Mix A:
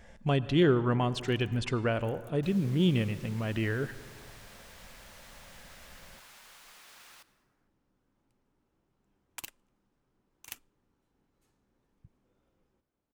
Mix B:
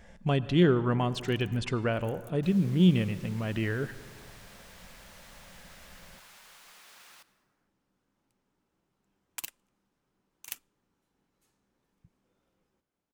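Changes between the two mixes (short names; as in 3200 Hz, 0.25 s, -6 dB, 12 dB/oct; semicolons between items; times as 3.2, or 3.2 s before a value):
first sound: add tilt +1.5 dB/oct; master: add bell 180 Hz +6.5 dB 0.23 oct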